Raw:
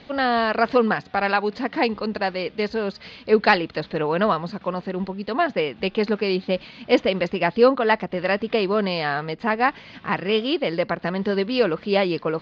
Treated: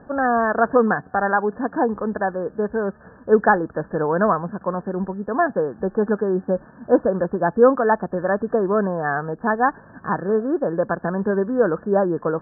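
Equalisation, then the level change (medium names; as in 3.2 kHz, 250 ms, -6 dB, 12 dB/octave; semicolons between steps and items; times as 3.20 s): brick-wall FIR low-pass 1.8 kHz; +2.0 dB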